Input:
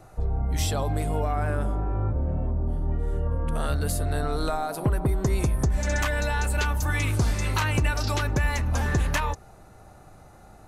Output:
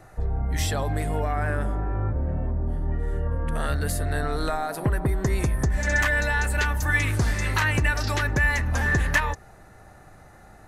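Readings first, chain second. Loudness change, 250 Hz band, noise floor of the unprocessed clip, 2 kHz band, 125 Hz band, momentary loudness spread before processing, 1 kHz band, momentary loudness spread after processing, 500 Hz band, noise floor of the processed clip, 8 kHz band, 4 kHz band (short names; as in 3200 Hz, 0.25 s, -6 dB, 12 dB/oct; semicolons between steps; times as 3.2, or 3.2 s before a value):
+1.5 dB, 0.0 dB, -50 dBFS, +7.0 dB, 0.0 dB, 4 LU, +0.5 dB, 7 LU, 0.0 dB, -49 dBFS, 0.0 dB, +0.5 dB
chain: bell 1800 Hz +10.5 dB 0.4 oct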